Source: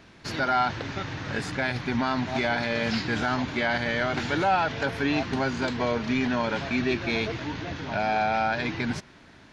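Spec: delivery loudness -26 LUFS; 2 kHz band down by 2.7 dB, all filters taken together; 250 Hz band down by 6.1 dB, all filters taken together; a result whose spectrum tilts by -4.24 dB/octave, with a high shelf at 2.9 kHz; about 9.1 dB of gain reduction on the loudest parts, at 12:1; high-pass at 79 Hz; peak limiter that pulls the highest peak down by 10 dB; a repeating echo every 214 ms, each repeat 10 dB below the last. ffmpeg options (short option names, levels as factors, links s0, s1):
-af "highpass=79,equalizer=f=250:t=o:g=-7,equalizer=f=2000:t=o:g=-5.5,highshelf=f=2900:g=5,acompressor=threshold=0.0355:ratio=12,alimiter=level_in=1.58:limit=0.0631:level=0:latency=1,volume=0.631,aecho=1:1:214|428|642|856:0.316|0.101|0.0324|0.0104,volume=3.55"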